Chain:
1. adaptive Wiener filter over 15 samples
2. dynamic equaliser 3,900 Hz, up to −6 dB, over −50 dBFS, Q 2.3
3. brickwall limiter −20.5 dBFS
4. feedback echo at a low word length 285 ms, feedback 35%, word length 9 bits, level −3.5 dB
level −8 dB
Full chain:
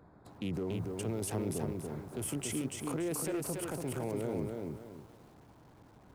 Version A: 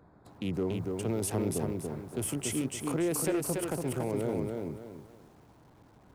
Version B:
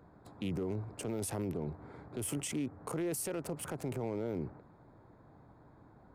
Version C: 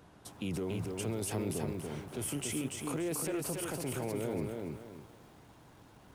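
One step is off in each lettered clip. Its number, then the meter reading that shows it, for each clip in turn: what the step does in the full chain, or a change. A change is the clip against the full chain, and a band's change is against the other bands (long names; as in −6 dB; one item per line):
3, average gain reduction 1.5 dB
4, change in integrated loudness −1.5 LU
1, 4 kHz band +2.5 dB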